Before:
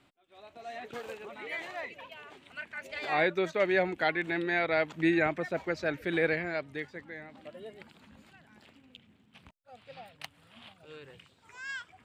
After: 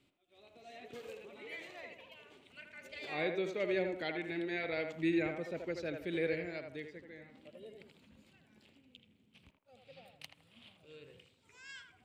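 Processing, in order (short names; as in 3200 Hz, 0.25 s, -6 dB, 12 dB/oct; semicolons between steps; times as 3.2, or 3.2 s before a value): band shelf 1100 Hz -9 dB; on a send: narrowing echo 80 ms, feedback 40%, band-pass 820 Hz, level -3.5 dB; on the sum: gain -6 dB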